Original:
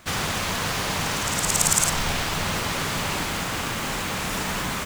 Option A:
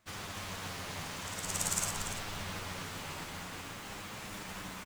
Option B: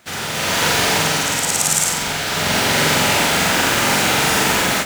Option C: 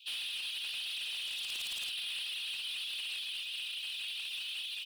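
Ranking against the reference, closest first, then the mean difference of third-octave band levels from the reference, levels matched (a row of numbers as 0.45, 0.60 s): A, B, C; 2.0, 4.0, 18.5 dB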